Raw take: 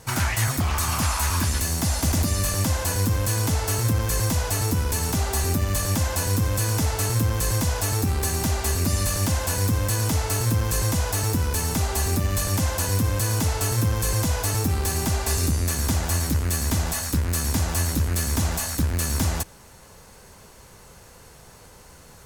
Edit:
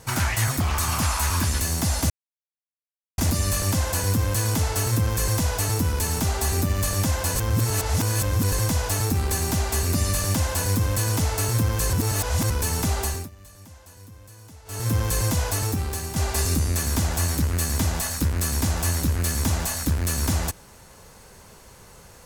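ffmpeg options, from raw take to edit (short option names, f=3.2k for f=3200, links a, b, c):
-filter_complex "[0:a]asplit=9[a][b][c][d][e][f][g][h][i];[a]atrim=end=2.1,asetpts=PTS-STARTPTS,afade=t=out:st=2.096:d=0.004:c=hsin,apad=pad_dur=1.08[j];[b]atrim=start=2.1:end=6.282,asetpts=PTS-STARTPTS,afade=t=in:d=0.004:c=hsin[k];[c]atrim=start=6.278:end=7.442,asetpts=PTS-STARTPTS,areverse[l];[d]atrim=start=7.438:end=10.852[m];[e]atrim=start=10.848:end=11.422,asetpts=PTS-STARTPTS,areverse[n];[f]atrim=start=11.418:end=12.22,asetpts=PTS-STARTPTS,afade=t=out:st=0.502:d=0.3:silence=0.0707946[o];[g]atrim=start=12.22:end=13.57,asetpts=PTS-STARTPTS,volume=-23dB[p];[h]atrim=start=13.57:end=15.08,asetpts=PTS-STARTPTS,afade=t=in:d=0.3:silence=0.0707946,afade=t=out:st=0.82:d=0.69:silence=0.398107[q];[i]atrim=start=15.08,asetpts=PTS-STARTPTS,afade=t=in:d=0.004:c=hsin:silence=0.398107[r];[j][k]concat=n=2:v=0:a=1[s];[s][l]acrossfade=d=0.004:c1=hsin:c2=hsin[t];[t][m]acrossfade=d=0.004:c1=hsin:c2=hsin[u];[u][n]acrossfade=d=0.004:c1=hsin:c2=hsin[v];[o][p][q][r]concat=n=4:v=0:a=1[w];[v][w]acrossfade=d=0.004:c1=hsin:c2=hsin"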